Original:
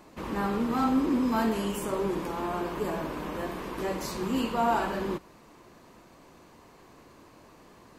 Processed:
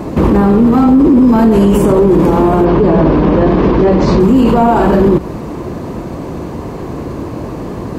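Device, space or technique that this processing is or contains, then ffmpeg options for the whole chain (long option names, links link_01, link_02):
mastering chain: -filter_complex "[0:a]asplit=3[link_01][link_02][link_03];[link_01]afade=type=out:start_time=2.64:duration=0.02[link_04];[link_02]lowpass=frequency=5300:width=0.5412,lowpass=frequency=5300:width=1.3066,afade=type=in:start_time=2.64:duration=0.02,afade=type=out:start_time=4.19:duration=0.02[link_05];[link_03]afade=type=in:start_time=4.19:duration=0.02[link_06];[link_04][link_05][link_06]amix=inputs=3:normalize=0,highpass=44,equalizer=frequency=220:width_type=o:width=0.89:gain=-2.5,acompressor=threshold=-33dB:ratio=2,asoftclip=type=tanh:threshold=-25.5dB,tiltshelf=frequency=720:gain=10,alimiter=level_in=29dB:limit=-1dB:release=50:level=0:latency=1,volume=-1dB"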